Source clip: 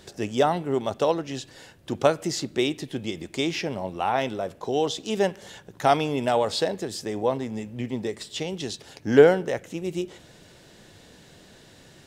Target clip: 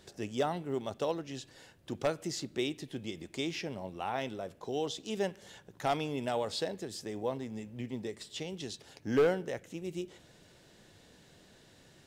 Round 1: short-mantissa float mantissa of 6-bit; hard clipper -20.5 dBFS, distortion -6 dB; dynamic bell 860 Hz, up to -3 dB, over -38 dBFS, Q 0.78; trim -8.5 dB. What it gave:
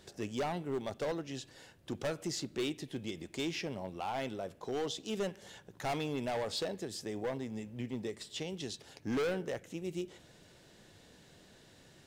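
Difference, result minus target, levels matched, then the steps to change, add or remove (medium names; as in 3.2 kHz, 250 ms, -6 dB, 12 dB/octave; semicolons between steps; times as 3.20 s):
hard clipper: distortion +9 dB
change: hard clipper -11 dBFS, distortion -15 dB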